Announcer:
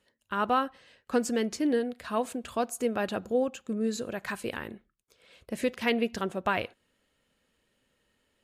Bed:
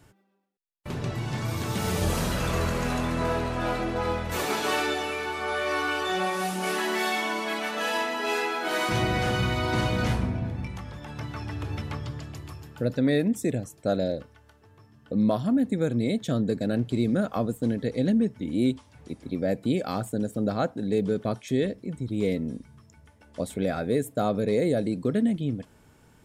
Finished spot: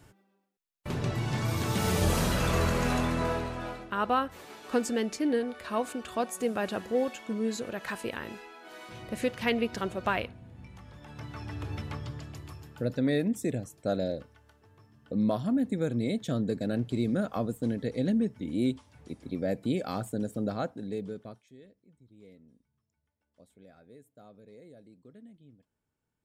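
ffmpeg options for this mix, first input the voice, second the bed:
ffmpeg -i stem1.wav -i stem2.wav -filter_complex "[0:a]adelay=3600,volume=-1dB[link_01];[1:a]volume=16dB,afade=type=out:start_time=2.98:duration=0.92:silence=0.1,afade=type=in:start_time=10.45:duration=1.16:silence=0.158489,afade=type=out:start_time=20.34:duration=1.16:silence=0.0630957[link_02];[link_01][link_02]amix=inputs=2:normalize=0" out.wav

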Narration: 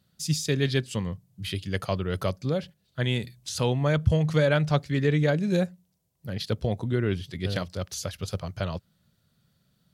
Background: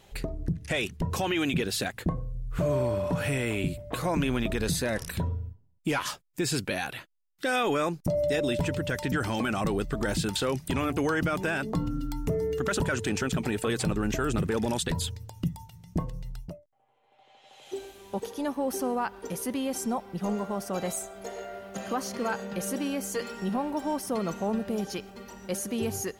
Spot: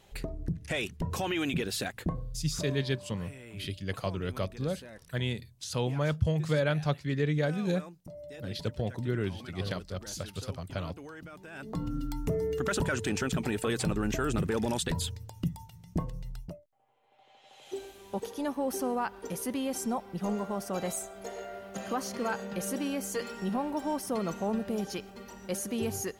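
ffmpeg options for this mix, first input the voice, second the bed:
ffmpeg -i stem1.wav -i stem2.wav -filter_complex "[0:a]adelay=2150,volume=-5.5dB[link_01];[1:a]volume=13.5dB,afade=type=out:start_time=2.23:duration=0.59:silence=0.16788,afade=type=in:start_time=11.5:duration=0.47:silence=0.141254[link_02];[link_01][link_02]amix=inputs=2:normalize=0" out.wav

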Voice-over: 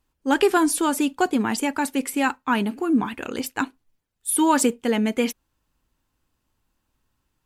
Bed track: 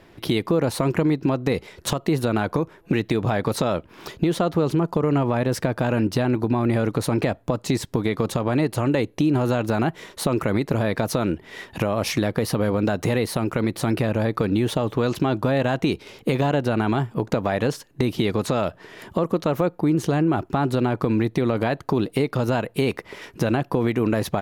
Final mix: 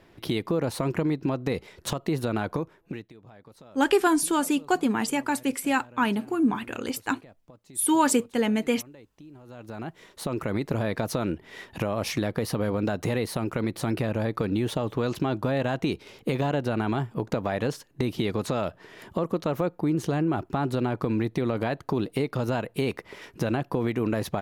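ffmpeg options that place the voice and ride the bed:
ffmpeg -i stem1.wav -i stem2.wav -filter_complex "[0:a]adelay=3500,volume=-2.5dB[link_01];[1:a]volume=17.5dB,afade=type=out:start_time=2.52:duration=0.6:silence=0.0749894,afade=type=in:start_time=9.45:duration=1.25:silence=0.0707946[link_02];[link_01][link_02]amix=inputs=2:normalize=0" out.wav

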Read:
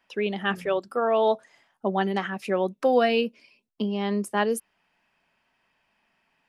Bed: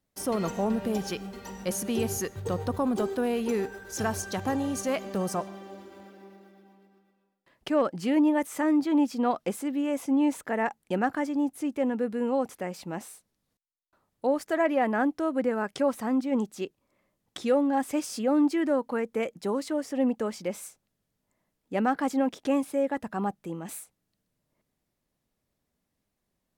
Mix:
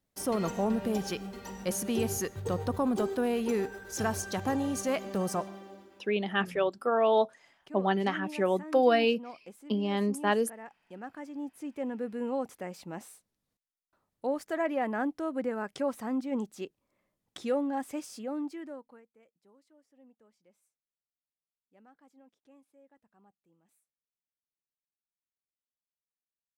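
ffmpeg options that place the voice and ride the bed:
ffmpeg -i stem1.wav -i stem2.wav -filter_complex "[0:a]adelay=5900,volume=-2.5dB[link_01];[1:a]volume=11.5dB,afade=type=out:start_time=5.45:duration=0.68:silence=0.141254,afade=type=in:start_time=10.93:duration=1.29:silence=0.223872,afade=type=out:start_time=17.52:duration=1.55:silence=0.0375837[link_02];[link_01][link_02]amix=inputs=2:normalize=0" out.wav

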